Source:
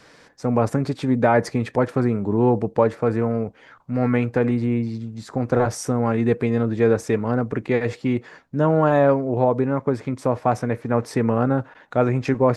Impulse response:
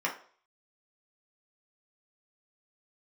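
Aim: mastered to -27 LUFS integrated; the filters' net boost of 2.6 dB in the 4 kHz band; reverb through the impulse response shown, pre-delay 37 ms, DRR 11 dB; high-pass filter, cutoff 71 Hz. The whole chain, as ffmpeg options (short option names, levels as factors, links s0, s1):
-filter_complex "[0:a]highpass=71,equalizer=f=4000:t=o:g=3.5,asplit=2[s0][s1];[1:a]atrim=start_sample=2205,adelay=37[s2];[s1][s2]afir=irnorm=-1:irlink=0,volume=0.106[s3];[s0][s3]amix=inputs=2:normalize=0,volume=0.531"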